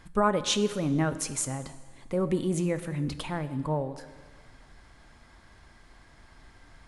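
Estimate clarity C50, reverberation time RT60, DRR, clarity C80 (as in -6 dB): 13.0 dB, 1.6 s, 11.0 dB, 14.0 dB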